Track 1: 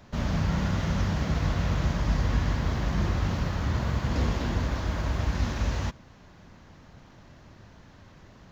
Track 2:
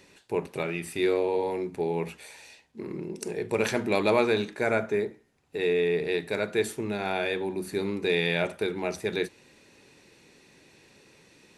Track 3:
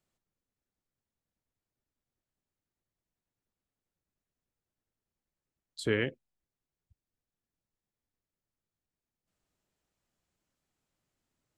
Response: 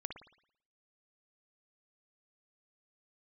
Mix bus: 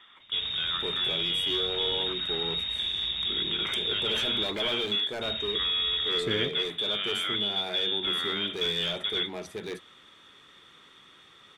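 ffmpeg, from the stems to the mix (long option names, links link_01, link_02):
-filter_complex "[0:a]asoftclip=type=tanh:threshold=-22dB,adelay=200,volume=-4.5dB,asplit=3[link_01][link_02][link_03];[link_01]atrim=end=4.5,asetpts=PTS-STARTPTS,afade=type=out:start_time=4.496:duration=0.004:curve=hsin[link_04];[link_02]atrim=start=4.5:end=5.21,asetpts=PTS-STARTPTS,volume=0[link_05];[link_03]atrim=start=5.21,asetpts=PTS-STARTPTS,afade=type=in:duration=0.004:curve=hsin[link_06];[link_04][link_05][link_06]concat=n=3:v=0:a=1,asplit=2[link_07][link_08];[link_08]volume=-15dB[link_09];[1:a]asoftclip=type=hard:threshold=-24.5dB,volume=2.5dB,asplit=3[link_10][link_11][link_12];[link_11]volume=-23dB[link_13];[link_12]volume=-8.5dB[link_14];[2:a]adelay=400,volume=-1.5dB[link_15];[link_07][link_10]amix=inputs=2:normalize=0,lowpass=frequency=3200:width_type=q:width=0.5098,lowpass=frequency=3200:width_type=q:width=0.6013,lowpass=frequency=3200:width_type=q:width=0.9,lowpass=frequency=3200:width_type=q:width=2.563,afreqshift=-3800,alimiter=limit=-21dB:level=0:latency=1:release=82,volume=0dB[link_16];[3:a]atrim=start_sample=2205[link_17];[link_09][link_13]amix=inputs=2:normalize=0[link_18];[link_18][link_17]afir=irnorm=-1:irlink=0[link_19];[link_14]aecho=0:1:509:1[link_20];[link_15][link_16][link_19][link_20]amix=inputs=4:normalize=0"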